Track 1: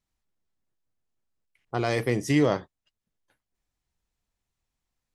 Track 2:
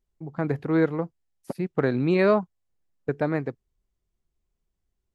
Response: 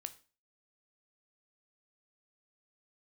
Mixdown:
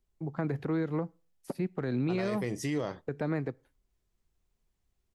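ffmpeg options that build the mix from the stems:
-filter_complex "[0:a]adelay=350,volume=-5dB,asplit=2[a][b];[b]volume=-18dB[c];[1:a]acrossover=split=260|3000[d][e][f];[e]acompressor=threshold=-26dB:ratio=6[g];[d][g][f]amix=inputs=3:normalize=0,volume=-0.5dB,asplit=2[h][i];[i]volume=-11.5dB[j];[2:a]atrim=start_sample=2205[k];[c][j]amix=inputs=2:normalize=0[l];[l][k]afir=irnorm=-1:irlink=0[m];[a][h][m]amix=inputs=3:normalize=0,alimiter=limit=-22.5dB:level=0:latency=1:release=117"

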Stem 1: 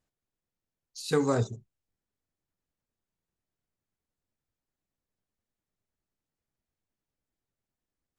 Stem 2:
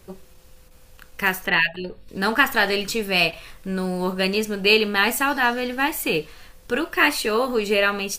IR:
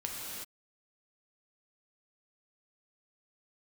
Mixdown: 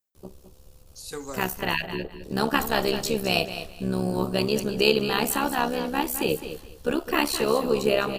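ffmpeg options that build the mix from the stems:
-filter_complex "[0:a]aemphasis=mode=production:type=bsi,volume=-8.5dB[a];[1:a]equalizer=f=1.9k:w=1.3:g=-11.5,dynaudnorm=f=560:g=3:m=3dB,tremolo=f=69:d=0.824,adelay=150,volume=0dB,asplit=2[b][c];[c]volume=-11dB,aecho=0:1:210|420|630|840:1|0.22|0.0484|0.0106[d];[a][b][d]amix=inputs=3:normalize=0"

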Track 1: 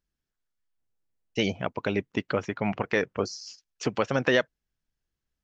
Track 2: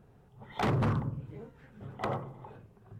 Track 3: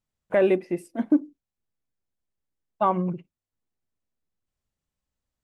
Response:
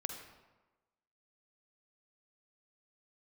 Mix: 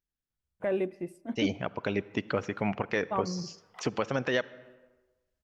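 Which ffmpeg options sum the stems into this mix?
-filter_complex "[0:a]volume=-3.5dB,afade=t=in:st=1.26:d=0.33:silence=0.446684,asplit=3[a][b][c];[b]volume=-12dB[d];[1:a]highpass=1.2k,adelay=1750,volume=-7dB[e];[2:a]equalizer=f=66:t=o:w=1.4:g=15,adelay=300,volume=-11dB,asplit=2[f][g];[g]volume=-17dB[h];[c]apad=whole_len=209365[i];[e][i]sidechaincompress=threshold=-46dB:ratio=8:attack=16:release=187[j];[3:a]atrim=start_sample=2205[k];[d][h]amix=inputs=2:normalize=0[l];[l][k]afir=irnorm=-1:irlink=0[m];[a][j][f][m]amix=inputs=4:normalize=0,alimiter=limit=-15dB:level=0:latency=1:release=243"

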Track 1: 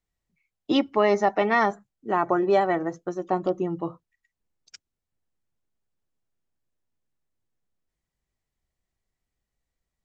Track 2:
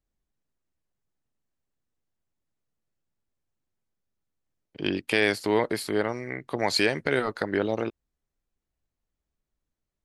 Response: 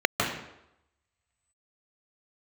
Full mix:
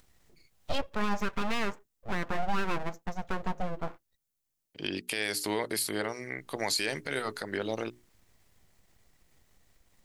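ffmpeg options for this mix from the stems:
-filter_complex "[0:a]acompressor=mode=upward:threshold=-41dB:ratio=2.5,aeval=exprs='abs(val(0))':c=same,volume=-3dB,asplit=3[a][b][c];[a]atrim=end=4.17,asetpts=PTS-STARTPTS,afade=t=out:st=4.166:d=0.004:c=hsin[d];[b]atrim=start=4.17:end=6.38,asetpts=PTS-STARTPTS,volume=0[e];[c]atrim=start=6.38,asetpts=PTS-STARTPTS,afade=t=in:d=0.004:c=hsin[f];[d][e][f]concat=n=3:v=0:a=1[g];[1:a]bandreject=f=60:t=h:w=6,bandreject=f=120:t=h:w=6,bandreject=f=180:t=h:w=6,bandreject=f=240:t=h:w=6,bandreject=f=300:t=h:w=6,bandreject=f=360:t=h:w=6,bandreject=f=420:t=h:w=6,crystalizer=i=4:c=0,volume=-6dB[h];[g][h]amix=inputs=2:normalize=0,alimiter=limit=-18.5dB:level=0:latency=1:release=74"

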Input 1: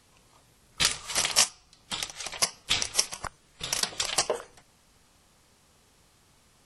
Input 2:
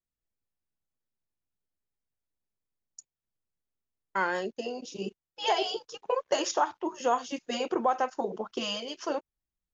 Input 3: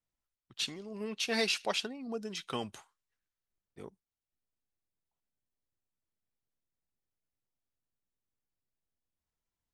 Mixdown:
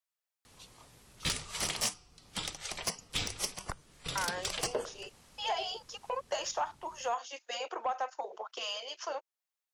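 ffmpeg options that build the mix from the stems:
-filter_complex "[0:a]adelay=450,volume=2dB[a];[1:a]highpass=f=620:w=0.5412,highpass=f=620:w=1.3066,volume=2.5dB[b];[2:a]aderivative,volume=-15.5dB[c];[a][b][c]amix=inputs=3:normalize=0,acrossover=split=440[d][e];[e]acompressor=threshold=-45dB:ratio=1.5[f];[d][f]amix=inputs=2:normalize=0,asoftclip=type=tanh:threshold=-23dB"

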